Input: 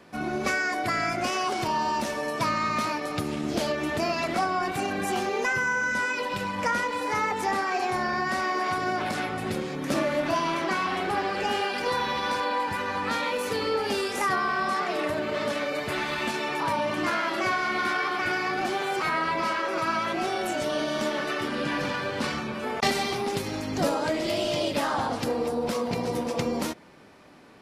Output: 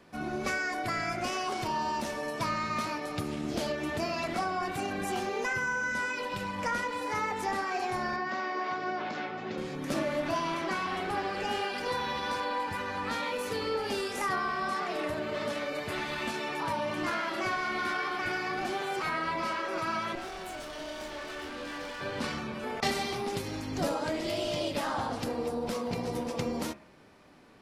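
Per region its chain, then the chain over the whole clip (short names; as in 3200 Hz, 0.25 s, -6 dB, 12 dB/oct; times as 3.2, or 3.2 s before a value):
8.16–9.58 HPF 220 Hz + air absorption 120 m + careless resampling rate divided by 3×, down none, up filtered
20.15–22.01 HPF 320 Hz + tube stage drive 32 dB, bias 0.65 + doubler 24 ms -6.5 dB
whole clip: low shelf 64 Hz +8.5 dB; de-hum 69.25 Hz, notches 39; gain -5 dB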